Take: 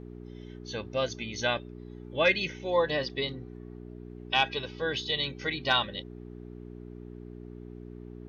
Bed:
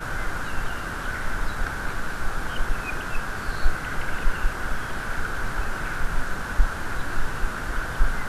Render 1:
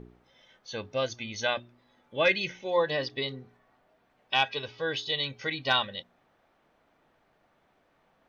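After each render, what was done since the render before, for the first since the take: de-hum 60 Hz, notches 7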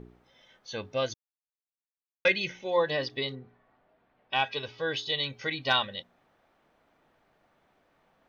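1.14–2.25 s: mute; 3.35–4.44 s: distance through air 210 m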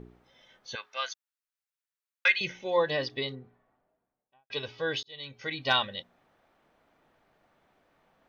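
0.75–2.41 s: resonant high-pass 1.3 kHz, resonance Q 1.6; 3.06–4.50 s: studio fade out; 5.03–5.67 s: fade in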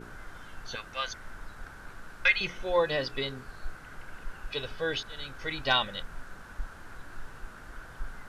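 add bed -17 dB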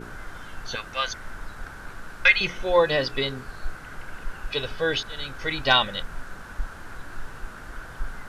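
trim +6.5 dB

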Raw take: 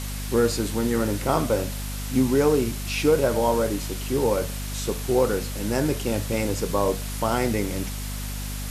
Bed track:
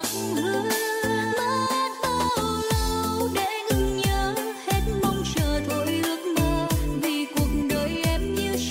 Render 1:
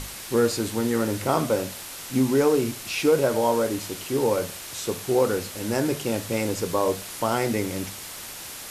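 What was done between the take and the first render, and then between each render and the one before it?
hum notches 50/100/150/200/250 Hz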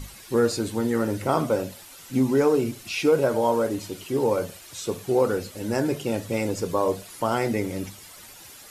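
noise reduction 11 dB, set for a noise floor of -38 dBFS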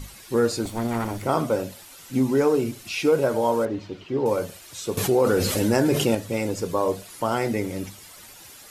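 0.65–1.23 s: comb filter that takes the minimum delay 0.89 ms; 3.65–4.26 s: distance through air 210 m; 4.97–6.15 s: level flattener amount 70%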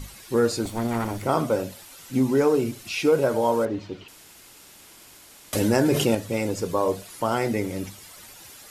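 4.08–5.53 s: room tone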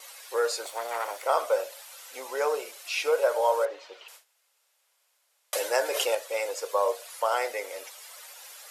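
gate with hold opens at -36 dBFS; elliptic high-pass 510 Hz, stop band 70 dB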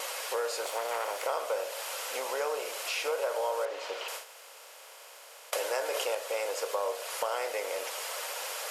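spectral levelling over time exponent 0.6; compression 2.5:1, threshold -33 dBFS, peak gain reduction 11.5 dB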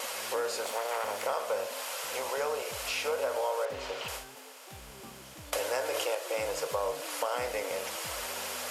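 add bed track -26.5 dB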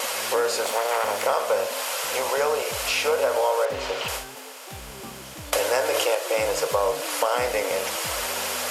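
trim +9 dB

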